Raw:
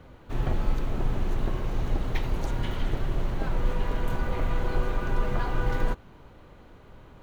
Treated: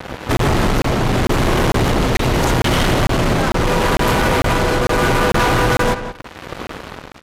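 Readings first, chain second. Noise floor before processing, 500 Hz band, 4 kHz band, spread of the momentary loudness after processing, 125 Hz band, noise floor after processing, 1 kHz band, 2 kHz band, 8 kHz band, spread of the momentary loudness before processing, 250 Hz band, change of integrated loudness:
-51 dBFS, +17.5 dB, +22.0 dB, 15 LU, +12.5 dB, -39 dBFS, +18.5 dB, +19.5 dB, n/a, 2 LU, +16.5 dB, +15.0 dB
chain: HPF 140 Hz 6 dB/oct; compressor, threshold -32 dBFS, peak gain reduction 5.5 dB; tremolo triangle 0.79 Hz, depth 55%; fuzz box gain 47 dB, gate -53 dBFS; on a send: darkening echo 0.176 s, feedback 18%, low-pass 4000 Hz, level -10 dB; on the sum: downsampling 32000 Hz; crackling interface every 0.45 s, samples 1024, zero, from 0.37

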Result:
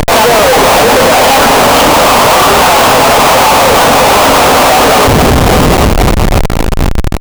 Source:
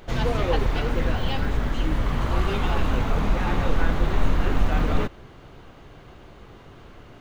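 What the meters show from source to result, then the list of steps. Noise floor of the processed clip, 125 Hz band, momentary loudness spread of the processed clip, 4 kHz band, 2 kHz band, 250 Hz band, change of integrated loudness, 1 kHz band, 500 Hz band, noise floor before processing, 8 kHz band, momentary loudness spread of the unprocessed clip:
-9 dBFS, +13.5 dB, 6 LU, +27.0 dB, +23.5 dB, +17.5 dB, +20.0 dB, +26.5 dB, +23.5 dB, -47 dBFS, n/a, 3 LU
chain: brick-wall FIR high-pass 240 Hz; notches 50/100/150/200/250/300/350 Hz; in parallel at -11 dB: companded quantiser 2-bit; on the sum: upward compressor, threshold -41 dBFS; multi-head echo 0.268 s, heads first and third, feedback 67%, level -19 dB; compressor, threshold -25 dBFS, peak gain reduction 6.5 dB; high shelf 4300 Hz -5 dB; fixed phaser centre 810 Hz, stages 4; Schmitt trigger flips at -42.5 dBFS; maximiser +30.5 dB; gain -1 dB

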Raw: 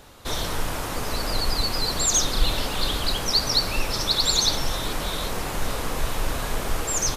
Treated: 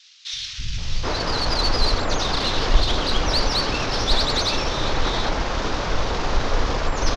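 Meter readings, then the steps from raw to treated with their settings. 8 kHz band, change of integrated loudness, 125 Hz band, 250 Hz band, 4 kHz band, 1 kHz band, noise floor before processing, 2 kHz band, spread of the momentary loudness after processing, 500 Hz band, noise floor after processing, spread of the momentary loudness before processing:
-8.5 dB, +1.5 dB, +4.5 dB, +4.0 dB, +0.5 dB, +5.0 dB, -30 dBFS, +4.0 dB, 8 LU, +5.0 dB, -33 dBFS, 9 LU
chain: CVSD 32 kbps; added harmonics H 8 -32 dB, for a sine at -9 dBFS; three bands offset in time highs, lows, mids 0.33/0.78 s, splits 160/2500 Hz; gain +6 dB

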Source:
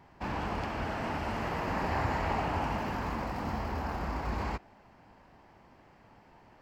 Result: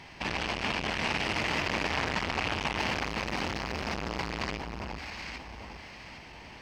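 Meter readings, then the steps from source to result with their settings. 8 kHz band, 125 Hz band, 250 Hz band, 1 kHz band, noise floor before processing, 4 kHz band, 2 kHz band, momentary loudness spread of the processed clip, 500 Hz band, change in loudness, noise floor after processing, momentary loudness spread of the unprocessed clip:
+11.0 dB, -2.0 dB, 0.0 dB, -0.5 dB, -59 dBFS, +13.0 dB, +7.5 dB, 15 LU, +1.0 dB, +2.5 dB, -48 dBFS, 5 LU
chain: band shelf 4200 Hz +14 dB 2.5 oct; notch 7300 Hz, Q 5.6; in parallel at +1 dB: limiter -27.5 dBFS, peak gain reduction 10.5 dB; on the sum: echo with dull and thin repeats by turns 0.403 s, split 1200 Hz, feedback 54%, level -4.5 dB; core saturation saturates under 1600 Hz

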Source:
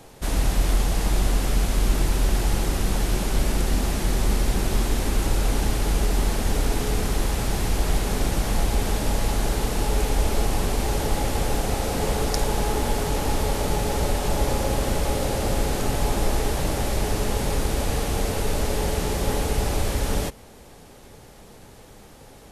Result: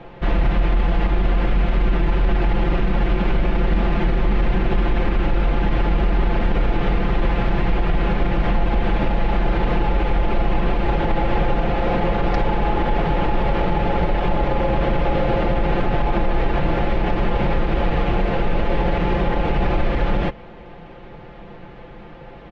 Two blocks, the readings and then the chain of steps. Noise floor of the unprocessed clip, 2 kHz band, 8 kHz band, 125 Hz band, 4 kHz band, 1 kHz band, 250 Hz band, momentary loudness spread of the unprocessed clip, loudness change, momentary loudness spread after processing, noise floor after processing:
-46 dBFS, +5.0 dB, under -25 dB, +3.5 dB, -3.5 dB, +6.0 dB, +5.5 dB, 2 LU, +3.5 dB, 2 LU, -39 dBFS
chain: LPF 2800 Hz 24 dB/oct; comb 5.8 ms; limiter -16.5 dBFS, peak gain reduction 9 dB; gain +6.5 dB

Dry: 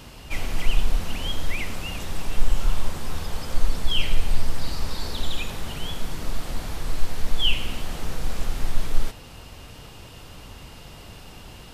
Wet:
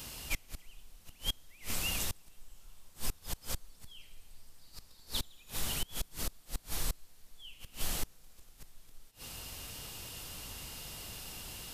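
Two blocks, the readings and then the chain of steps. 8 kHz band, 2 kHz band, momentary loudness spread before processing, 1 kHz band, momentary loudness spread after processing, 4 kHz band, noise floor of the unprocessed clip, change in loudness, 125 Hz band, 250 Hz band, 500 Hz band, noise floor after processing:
-1.0 dB, -10.5 dB, 17 LU, -13.0 dB, 22 LU, -10.5 dB, -43 dBFS, -9.0 dB, -15.5 dB, -13.5 dB, -13.5 dB, -60 dBFS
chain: flipped gate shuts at -16 dBFS, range -27 dB; pre-emphasis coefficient 0.8; gain +6.5 dB

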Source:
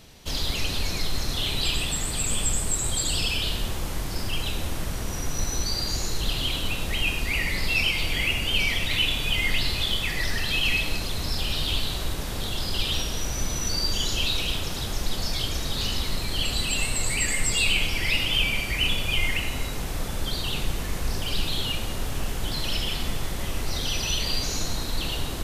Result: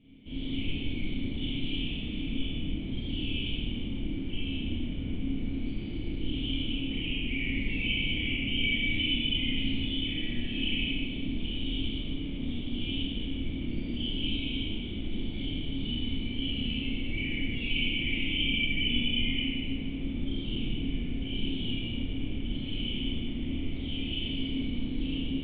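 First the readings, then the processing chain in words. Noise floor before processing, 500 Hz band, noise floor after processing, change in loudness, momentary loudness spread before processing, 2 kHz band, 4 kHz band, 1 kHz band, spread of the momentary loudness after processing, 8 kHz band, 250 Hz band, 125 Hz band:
-31 dBFS, -8.5 dB, -35 dBFS, -6.0 dB, 8 LU, -7.0 dB, -6.0 dB, under -20 dB, 8 LU, under -40 dB, +4.5 dB, -4.5 dB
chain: vocal tract filter i; Schroeder reverb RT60 1.5 s, combs from 26 ms, DRR -7.5 dB

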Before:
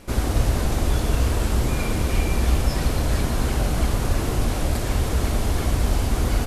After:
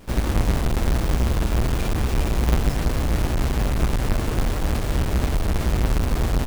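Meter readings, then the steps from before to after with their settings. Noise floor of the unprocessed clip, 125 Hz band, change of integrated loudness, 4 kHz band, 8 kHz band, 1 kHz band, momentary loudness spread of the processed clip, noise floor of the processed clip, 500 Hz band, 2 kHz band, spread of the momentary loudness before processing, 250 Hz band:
-26 dBFS, 0.0 dB, 0.0 dB, -1.5 dB, -4.0 dB, -0.5 dB, 2 LU, -25 dBFS, -0.5 dB, -0.5 dB, 2 LU, +0.5 dB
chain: half-waves squared off; gain -5 dB

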